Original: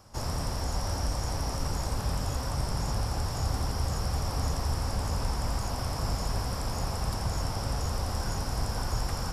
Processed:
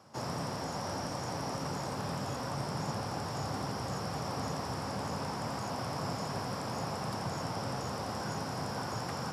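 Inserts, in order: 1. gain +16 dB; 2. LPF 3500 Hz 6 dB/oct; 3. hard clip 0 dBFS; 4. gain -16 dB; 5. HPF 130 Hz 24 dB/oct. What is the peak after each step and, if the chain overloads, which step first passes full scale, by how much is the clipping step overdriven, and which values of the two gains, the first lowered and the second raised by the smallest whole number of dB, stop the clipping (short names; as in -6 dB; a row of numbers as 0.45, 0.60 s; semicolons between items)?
-1.0, -1.5, -1.5, -17.5, -23.5 dBFS; no overload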